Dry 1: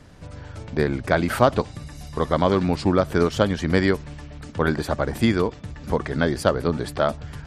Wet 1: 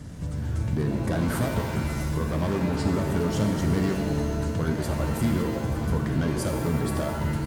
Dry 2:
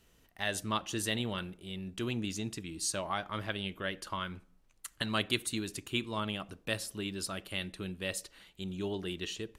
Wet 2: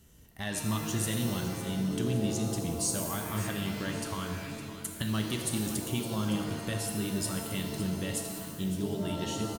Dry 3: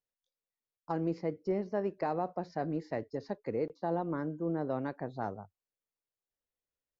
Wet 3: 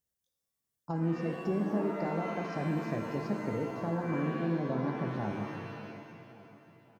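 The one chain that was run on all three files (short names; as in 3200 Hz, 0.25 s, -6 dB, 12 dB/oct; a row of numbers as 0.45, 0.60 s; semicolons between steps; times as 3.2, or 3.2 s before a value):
bell 4400 Hz -4 dB 0.77 oct; soft clip -17 dBFS; compressor 2:1, threshold -39 dBFS; HPF 110 Hz 6 dB/oct; tone controls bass +15 dB, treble +8 dB; notch 2500 Hz, Q 11; on a send: feedback echo 0.561 s, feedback 42%, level -13.5 dB; on the sum: shimmer reverb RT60 1.4 s, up +7 st, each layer -2 dB, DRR 4 dB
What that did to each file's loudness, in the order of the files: -4.0, +3.5, +2.0 LU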